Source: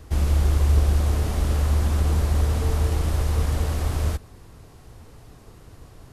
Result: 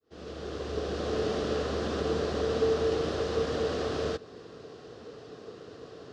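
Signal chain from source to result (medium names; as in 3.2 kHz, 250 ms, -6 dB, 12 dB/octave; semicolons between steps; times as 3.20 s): fade-in on the opening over 1.21 s; in parallel at -2 dB: compression, threshold -31 dBFS, peak gain reduction 14.5 dB; on the sum: cabinet simulation 250–5200 Hz, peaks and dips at 450 Hz +9 dB, 900 Hz -10 dB, 2.2 kHz -9 dB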